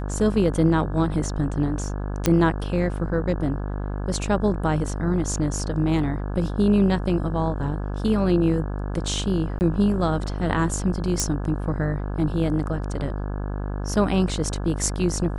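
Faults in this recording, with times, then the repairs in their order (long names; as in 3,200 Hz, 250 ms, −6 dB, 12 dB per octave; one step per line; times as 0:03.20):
mains buzz 50 Hz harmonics 34 −28 dBFS
0:02.26: click −5 dBFS
0:09.59–0:09.61: drop-out 19 ms
0:11.20: click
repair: click removal
hum removal 50 Hz, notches 34
repair the gap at 0:09.59, 19 ms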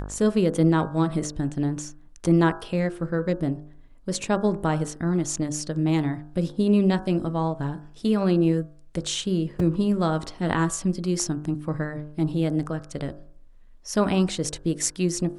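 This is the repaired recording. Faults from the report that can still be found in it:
none of them is left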